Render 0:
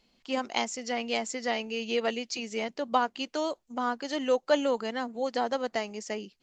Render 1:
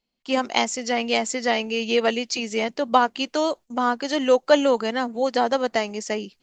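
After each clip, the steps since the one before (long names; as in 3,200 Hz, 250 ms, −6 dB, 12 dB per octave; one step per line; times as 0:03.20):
noise gate with hold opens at −51 dBFS
level +8 dB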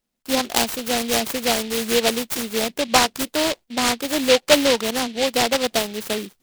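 short delay modulated by noise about 3,000 Hz, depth 0.16 ms
level +1.5 dB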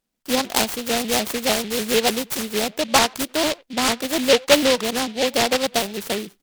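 far-end echo of a speakerphone 90 ms, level −25 dB
pitch modulation by a square or saw wave saw up 6.7 Hz, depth 160 cents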